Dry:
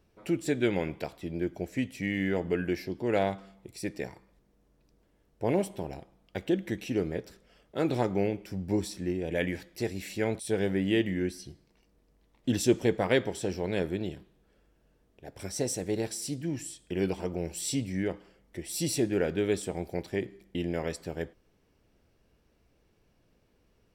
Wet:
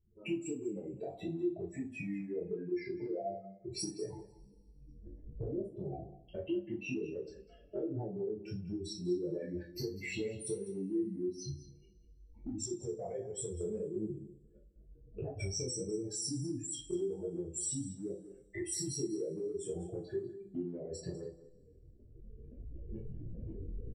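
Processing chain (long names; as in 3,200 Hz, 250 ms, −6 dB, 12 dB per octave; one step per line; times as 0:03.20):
expanding power law on the bin magnitudes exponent 3.3
camcorder AGC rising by 16 dB per second
0:12.59–0:13.61: parametric band 280 Hz −14.5 dB 1.3 octaves
downward compressor, threshold −35 dBFS, peak gain reduction 13 dB
chorus effect 1.5 Hz, delay 18.5 ms, depth 5.2 ms
on a send: single-tap delay 197 ms −16 dB
on the sum: coupled-rooms reverb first 0.27 s, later 1.8 s, from −27 dB, DRR −4.5 dB
level −3 dB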